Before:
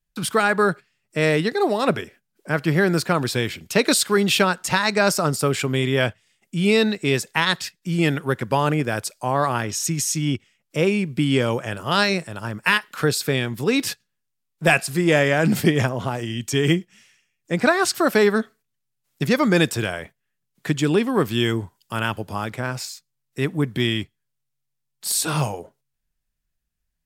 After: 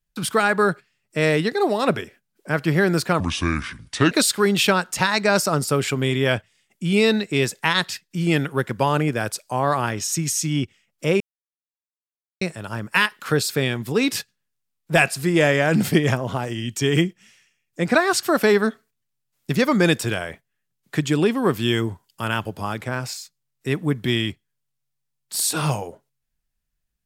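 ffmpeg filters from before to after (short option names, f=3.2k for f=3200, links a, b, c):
-filter_complex "[0:a]asplit=5[a][b][c][d][e];[a]atrim=end=3.204[f];[b]atrim=start=3.2:end=3.83,asetpts=PTS-STARTPTS,asetrate=30429,aresample=44100,atrim=end_sample=40265,asetpts=PTS-STARTPTS[g];[c]atrim=start=3.826:end=10.92,asetpts=PTS-STARTPTS,afade=t=out:st=7.09:d=0.004:c=hsin[h];[d]atrim=start=10.92:end=12.13,asetpts=PTS-STARTPTS,volume=0[i];[e]atrim=start=12.13,asetpts=PTS-STARTPTS,afade=t=in:d=0.004:c=hsin[j];[f][g]acrossfade=d=0.004:c1=hsin:c2=hsin[k];[h][i][j]concat=n=3:v=0:a=1[l];[k][l]acrossfade=d=0.004:c1=hsin:c2=hsin"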